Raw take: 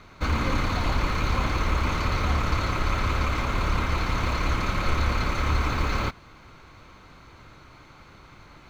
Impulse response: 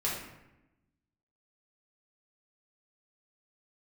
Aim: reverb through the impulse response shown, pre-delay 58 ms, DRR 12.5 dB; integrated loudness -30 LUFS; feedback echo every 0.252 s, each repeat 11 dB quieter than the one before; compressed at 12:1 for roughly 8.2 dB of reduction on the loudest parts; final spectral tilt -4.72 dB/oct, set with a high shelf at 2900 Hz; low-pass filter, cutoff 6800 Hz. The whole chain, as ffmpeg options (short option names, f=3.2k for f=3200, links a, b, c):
-filter_complex "[0:a]lowpass=6.8k,highshelf=f=2.9k:g=-3,acompressor=threshold=-27dB:ratio=12,aecho=1:1:252|504|756:0.282|0.0789|0.0221,asplit=2[a][b];[1:a]atrim=start_sample=2205,adelay=58[c];[b][c]afir=irnorm=-1:irlink=0,volume=-19dB[d];[a][d]amix=inputs=2:normalize=0,volume=3dB"